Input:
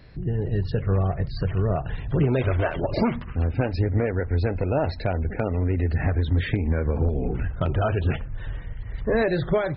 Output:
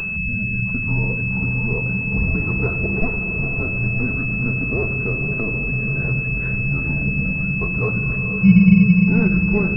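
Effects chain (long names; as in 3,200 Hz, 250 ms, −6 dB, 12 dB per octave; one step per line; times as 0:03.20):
0:08.42–0:08.93: spectral tilt −4 dB per octave
feedback delay with all-pass diffusion 461 ms, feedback 62%, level −7.5 dB
convolution reverb RT60 0.85 s, pre-delay 5 ms, DRR 6 dB
frequency shifter −220 Hz
upward compression, threshold −19 dBFS
switching amplifier with a slow clock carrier 2,600 Hz
level −1.5 dB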